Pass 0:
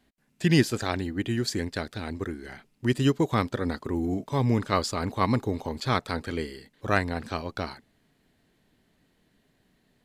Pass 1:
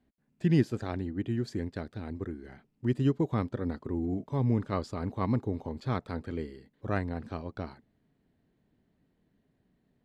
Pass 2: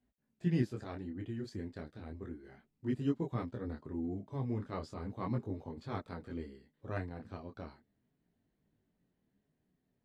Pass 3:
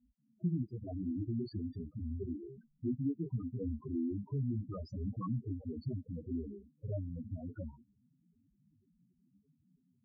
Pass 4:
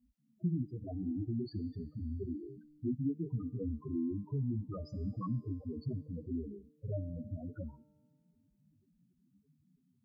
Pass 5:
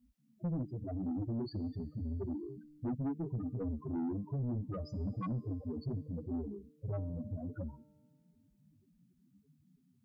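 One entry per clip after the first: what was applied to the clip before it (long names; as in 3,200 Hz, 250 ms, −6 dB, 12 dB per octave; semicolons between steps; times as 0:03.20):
high-pass filter 150 Hz 6 dB per octave; spectral tilt −3.5 dB per octave; level −9 dB
micro pitch shift up and down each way 12 cents; level −4 dB
downward compressor, threshold −41 dBFS, peak gain reduction 14.5 dB; spectral peaks only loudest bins 4; level +10 dB
tuned comb filter 150 Hz, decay 2 s, mix 70%; level +10.5 dB
soft clipping −34.5 dBFS, distortion −12 dB; level +3 dB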